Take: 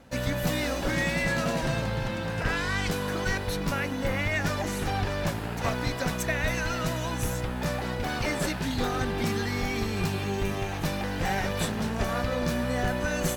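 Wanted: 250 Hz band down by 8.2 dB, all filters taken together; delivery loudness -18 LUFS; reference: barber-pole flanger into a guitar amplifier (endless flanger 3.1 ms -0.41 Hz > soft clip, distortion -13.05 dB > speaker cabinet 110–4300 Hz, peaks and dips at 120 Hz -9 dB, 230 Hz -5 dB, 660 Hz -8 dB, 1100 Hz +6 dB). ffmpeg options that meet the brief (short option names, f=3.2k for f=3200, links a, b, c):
-filter_complex "[0:a]equalizer=f=250:t=o:g=-7.5,asplit=2[a][b];[b]adelay=3.1,afreqshift=-0.41[c];[a][c]amix=inputs=2:normalize=1,asoftclip=threshold=-29.5dB,highpass=110,equalizer=f=120:t=q:w=4:g=-9,equalizer=f=230:t=q:w=4:g=-5,equalizer=f=660:t=q:w=4:g=-8,equalizer=f=1.1k:t=q:w=4:g=6,lowpass=f=4.3k:w=0.5412,lowpass=f=4.3k:w=1.3066,volume=19.5dB"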